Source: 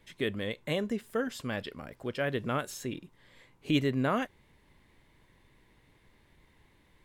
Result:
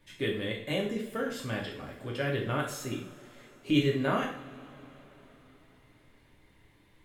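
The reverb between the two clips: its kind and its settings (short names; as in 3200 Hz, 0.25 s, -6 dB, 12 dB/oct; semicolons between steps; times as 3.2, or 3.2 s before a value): two-slope reverb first 0.53 s, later 4.3 s, from -22 dB, DRR -2 dB; gain -3 dB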